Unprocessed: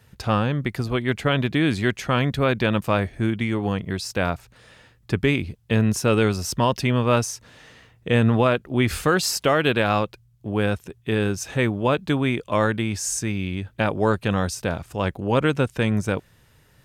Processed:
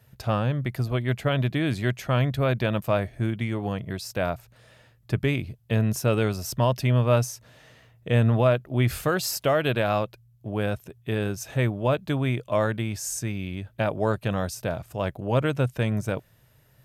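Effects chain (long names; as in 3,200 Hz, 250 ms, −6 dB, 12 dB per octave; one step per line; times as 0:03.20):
thirty-one-band graphic EQ 125 Hz +9 dB, 630 Hz +8 dB, 12,500 Hz +10 dB
level −6 dB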